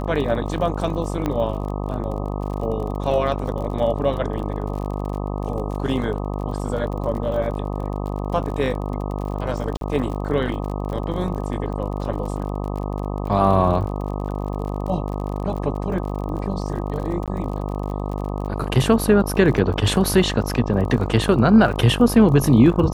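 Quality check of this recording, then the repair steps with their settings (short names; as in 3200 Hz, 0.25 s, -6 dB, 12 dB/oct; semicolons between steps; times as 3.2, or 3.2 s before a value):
buzz 50 Hz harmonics 25 -26 dBFS
crackle 41/s -30 dBFS
1.26 pop -11 dBFS
9.77–9.81 gap 42 ms
17.26–17.28 gap 17 ms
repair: de-click; de-hum 50 Hz, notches 25; interpolate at 9.77, 42 ms; interpolate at 17.26, 17 ms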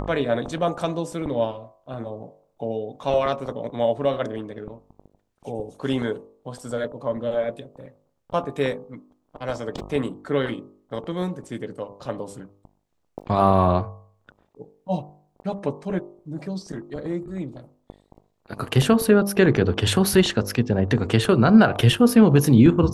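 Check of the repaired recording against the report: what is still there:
none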